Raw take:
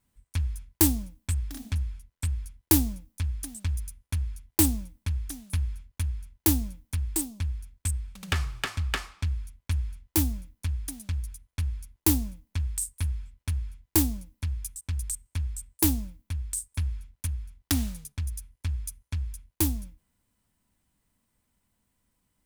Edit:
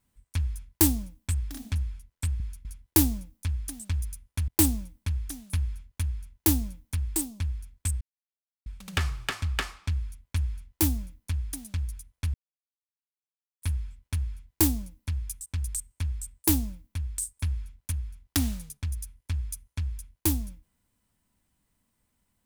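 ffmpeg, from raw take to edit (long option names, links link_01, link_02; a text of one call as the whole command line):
ffmpeg -i in.wav -filter_complex "[0:a]asplit=7[link_01][link_02][link_03][link_04][link_05][link_06][link_07];[link_01]atrim=end=2.402[link_08];[link_02]atrim=start=4.228:end=4.482[link_09];[link_03]atrim=start=2.398:end=4.232[link_10];[link_04]atrim=start=4.478:end=8.01,asetpts=PTS-STARTPTS,afade=type=out:start_time=3.528:duration=0.004:curve=hsin,apad=pad_dur=0.65[link_11];[link_05]atrim=start=8.01:end=11.69,asetpts=PTS-STARTPTS,afade=type=in:duration=0.004:curve=hsin,afade=type=out:start_time=3.676:duration=0.004:curve=hsin[link_12];[link_06]atrim=start=11.69:end=12.97,asetpts=PTS-STARTPTS,volume=0[link_13];[link_07]atrim=start=12.97,asetpts=PTS-STARTPTS,afade=type=in:duration=0.004:curve=hsin[link_14];[link_08][link_09]acrossfade=duration=0.004:curve1=hsin:curve2=hsin[link_15];[link_15][link_10]acrossfade=duration=0.004:curve1=hsin:curve2=hsin[link_16];[link_11][link_12][link_13][link_14]concat=n=4:v=0:a=1[link_17];[link_16][link_17]acrossfade=duration=0.004:curve1=hsin:curve2=hsin" out.wav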